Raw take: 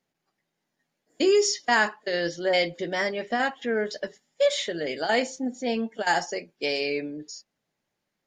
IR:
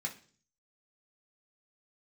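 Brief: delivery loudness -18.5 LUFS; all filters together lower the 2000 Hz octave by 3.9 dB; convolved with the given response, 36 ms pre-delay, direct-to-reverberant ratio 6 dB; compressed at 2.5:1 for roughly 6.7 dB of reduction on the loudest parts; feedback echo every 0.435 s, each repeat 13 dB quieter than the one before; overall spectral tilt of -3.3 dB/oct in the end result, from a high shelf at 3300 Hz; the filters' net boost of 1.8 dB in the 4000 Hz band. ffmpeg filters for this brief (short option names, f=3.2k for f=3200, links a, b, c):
-filter_complex "[0:a]equalizer=f=2k:t=o:g=-5,highshelf=f=3.3k:g=-4.5,equalizer=f=4k:t=o:g=7.5,acompressor=threshold=-27dB:ratio=2.5,aecho=1:1:435|870|1305:0.224|0.0493|0.0108,asplit=2[a][b];[1:a]atrim=start_sample=2205,adelay=36[c];[b][c]afir=irnorm=-1:irlink=0,volume=-7dB[d];[a][d]amix=inputs=2:normalize=0,volume=11.5dB"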